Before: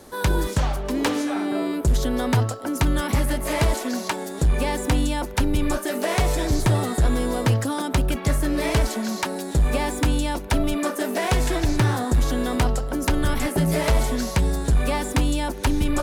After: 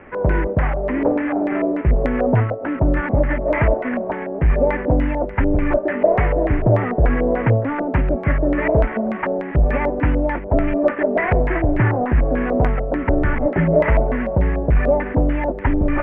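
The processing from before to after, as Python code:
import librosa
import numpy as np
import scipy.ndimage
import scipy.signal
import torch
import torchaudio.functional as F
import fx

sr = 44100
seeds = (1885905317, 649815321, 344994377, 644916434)

y = fx.cvsd(x, sr, bps=16000)
y = fx.air_absorb(y, sr, metres=400.0)
y = fx.filter_lfo_lowpass(y, sr, shape='square', hz=3.4, low_hz=620.0, high_hz=2000.0, q=3.5)
y = y * 10.0 ** (4.0 / 20.0)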